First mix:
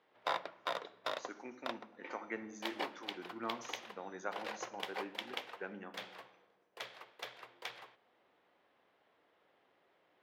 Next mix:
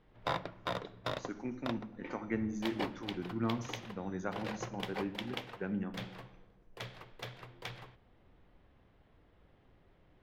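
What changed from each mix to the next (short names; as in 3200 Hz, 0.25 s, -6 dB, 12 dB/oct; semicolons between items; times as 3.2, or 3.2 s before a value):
master: remove HPF 500 Hz 12 dB/oct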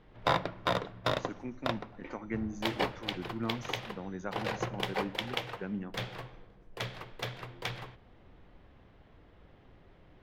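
speech: send -8.0 dB; background +7.0 dB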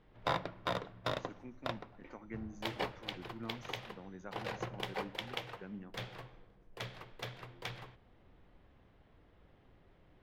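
speech -9.5 dB; background -6.0 dB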